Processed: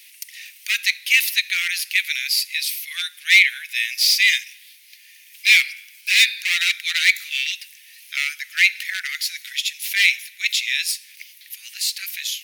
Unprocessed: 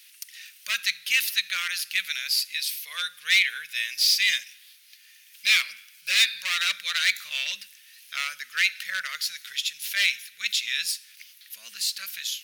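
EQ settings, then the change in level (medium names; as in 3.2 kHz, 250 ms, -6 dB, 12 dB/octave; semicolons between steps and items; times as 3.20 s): resonant high-pass 2.1 kHz, resonance Q 3.4; treble shelf 3.8 kHz +10 dB; -4.0 dB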